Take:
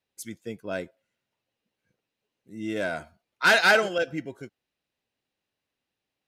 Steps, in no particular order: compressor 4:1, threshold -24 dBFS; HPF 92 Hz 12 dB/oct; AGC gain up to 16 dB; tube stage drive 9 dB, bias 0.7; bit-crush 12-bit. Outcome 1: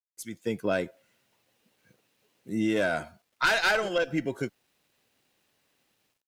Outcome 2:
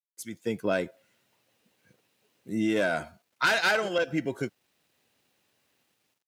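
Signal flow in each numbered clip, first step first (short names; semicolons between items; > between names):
HPF > tube stage > AGC > compressor > bit-crush; tube stage > AGC > compressor > bit-crush > HPF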